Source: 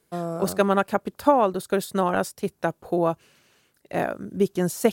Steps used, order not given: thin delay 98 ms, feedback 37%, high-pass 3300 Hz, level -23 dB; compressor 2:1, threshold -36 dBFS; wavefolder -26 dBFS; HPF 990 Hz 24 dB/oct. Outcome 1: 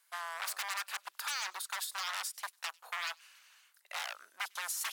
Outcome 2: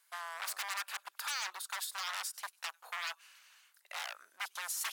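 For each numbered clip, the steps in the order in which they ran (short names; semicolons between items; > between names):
wavefolder > HPF > compressor > thin delay; thin delay > wavefolder > compressor > HPF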